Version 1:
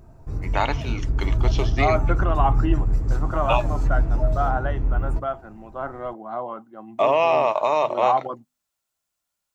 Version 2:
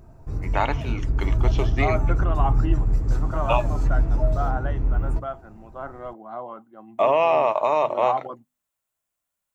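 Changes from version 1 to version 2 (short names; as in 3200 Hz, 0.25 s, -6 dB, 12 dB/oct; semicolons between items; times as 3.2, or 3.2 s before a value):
first voice: add bell 4900 Hz -8 dB 1.1 oct; second voice -4.5 dB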